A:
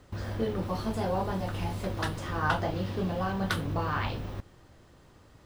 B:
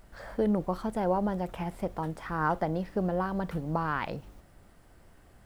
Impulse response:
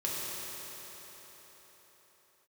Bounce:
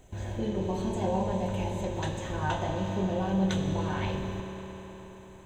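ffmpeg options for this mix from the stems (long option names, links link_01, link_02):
-filter_complex "[0:a]lowpass=frequency=6800:width=0.5412,lowpass=frequency=6800:width=1.3066,volume=-6.5dB,asplit=2[link_01][link_02];[link_02]volume=-3.5dB[link_03];[1:a]acompressor=threshold=-31dB:ratio=6,volume=-1,volume=-4.5dB,asplit=2[link_04][link_05];[link_05]volume=-17.5dB[link_06];[2:a]atrim=start_sample=2205[link_07];[link_03][link_06]amix=inputs=2:normalize=0[link_08];[link_08][link_07]afir=irnorm=-1:irlink=0[link_09];[link_01][link_04][link_09]amix=inputs=3:normalize=0,superequalizer=10b=0.282:11b=0.631:14b=0.316:15b=2.82"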